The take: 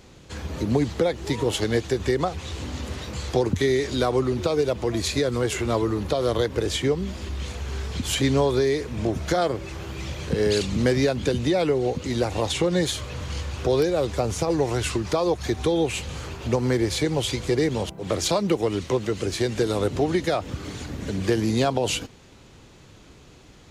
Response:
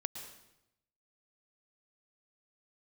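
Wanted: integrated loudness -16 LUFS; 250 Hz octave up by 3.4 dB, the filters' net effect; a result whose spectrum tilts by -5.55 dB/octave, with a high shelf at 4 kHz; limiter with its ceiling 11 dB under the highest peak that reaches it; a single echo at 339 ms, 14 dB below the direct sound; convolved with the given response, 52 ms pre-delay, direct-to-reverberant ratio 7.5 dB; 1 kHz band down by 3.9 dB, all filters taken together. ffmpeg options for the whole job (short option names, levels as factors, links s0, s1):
-filter_complex "[0:a]equalizer=f=250:t=o:g=5,equalizer=f=1000:t=o:g=-6,highshelf=f=4000:g=-3,alimiter=limit=0.133:level=0:latency=1,aecho=1:1:339:0.2,asplit=2[s0][s1];[1:a]atrim=start_sample=2205,adelay=52[s2];[s1][s2]afir=irnorm=-1:irlink=0,volume=0.447[s3];[s0][s3]amix=inputs=2:normalize=0,volume=3.55"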